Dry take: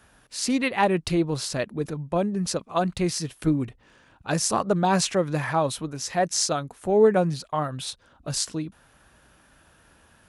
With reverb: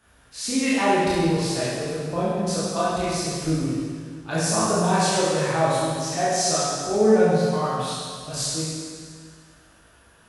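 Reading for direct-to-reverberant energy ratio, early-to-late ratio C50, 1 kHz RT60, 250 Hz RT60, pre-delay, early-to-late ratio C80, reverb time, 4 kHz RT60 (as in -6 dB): -9.5 dB, -3.5 dB, 1.9 s, 1.9 s, 19 ms, -0.5 dB, 1.9 s, 1.9 s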